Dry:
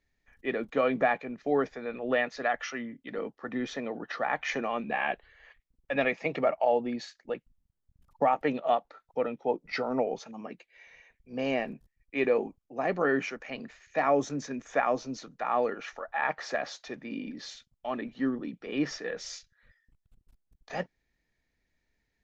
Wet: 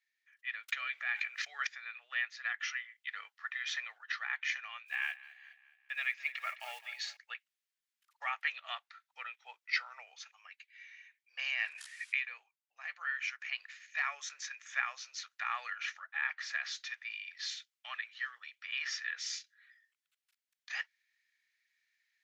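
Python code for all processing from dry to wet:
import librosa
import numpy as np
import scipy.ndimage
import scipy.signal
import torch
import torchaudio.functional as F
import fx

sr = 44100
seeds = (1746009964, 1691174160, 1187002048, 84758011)

y = fx.chain(x, sr, fx.highpass(hz=350.0, slope=6),
    fx.peak_eq(hz=1000.0, db=-9.0, octaves=0.22),
    fx.env_flatten(amount_pct=70), at=(0.68, 1.67))
y = fx.chain(y, sr, fx.block_float(bits=7),
    fx.echo_feedback(ms=211, feedback_pct=52, wet_db=-18.0), at=(4.86, 7.17))
y = fx.chain(y, sr, fx.resample_bad(factor=2, down='none', up='filtered'),
    fx.env_flatten(amount_pct=100), at=(11.37, 12.23))
y = scipy.signal.sosfilt(scipy.signal.cheby2(4, 80, 280.0, 'highpass', fs=sr, output='sos'), y)
y = fx.high_shelf(y, sr, hz=4900.0, db=-7.5)
y = fx.rider(y, sr, range_db=5, speed_s=0.5)
y = y * librosa.db_to_amplitude(2.5)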